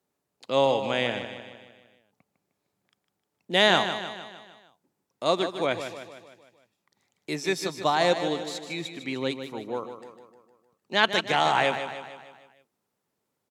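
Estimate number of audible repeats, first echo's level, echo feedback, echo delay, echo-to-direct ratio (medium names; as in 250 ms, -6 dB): 5, -9.5 dB, 53%, 153 ms, -8.0 dB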